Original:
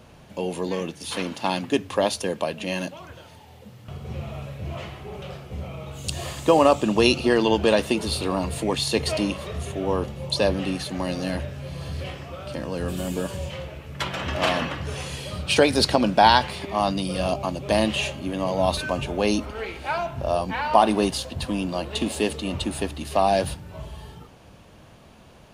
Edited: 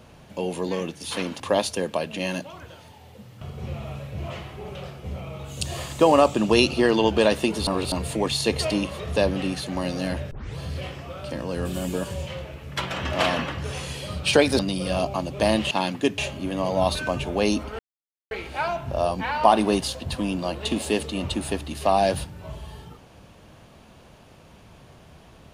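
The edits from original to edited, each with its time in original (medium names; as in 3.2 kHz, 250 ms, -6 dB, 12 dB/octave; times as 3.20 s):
1.40–1.87 s: move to 18.00 s
8.14–8.39 s: reverse
9.63–10.39 s: delete
11.54 s: tape start 0.26 s
15.82–16.88 s: delete
19.61 s: insert silence 0.52 s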